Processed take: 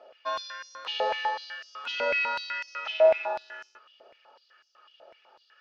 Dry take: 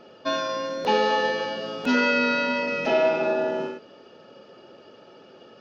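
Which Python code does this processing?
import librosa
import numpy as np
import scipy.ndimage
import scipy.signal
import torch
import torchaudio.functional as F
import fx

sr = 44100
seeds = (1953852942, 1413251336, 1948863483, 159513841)

y = fx.air_absorb(x, sr, metres=58.0)
y = fx.filter_held_highpass(y, sr, hz=8.0, low_hz=630.0, high_hz=5800.0)
y = y * 10.0 ** (-8.5 / 20.0)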